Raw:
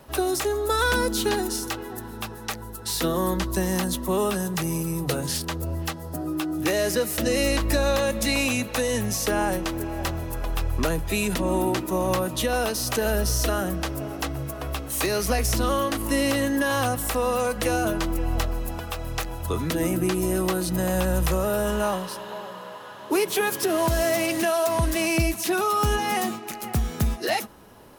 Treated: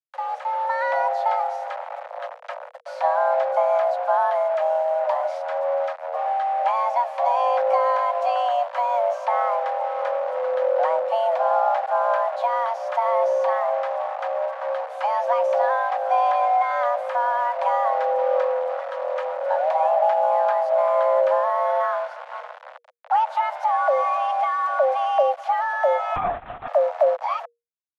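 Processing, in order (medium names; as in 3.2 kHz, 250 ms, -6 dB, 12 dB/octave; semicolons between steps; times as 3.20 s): level rider gain up to 9 dB; bit crusher 4-bit; frequency shift +470 Hz; ladder band-pass 740 Hz, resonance 45%; 26.16–26.68 s: LPC vocoder at 8 kHz whisper; trim +4 dB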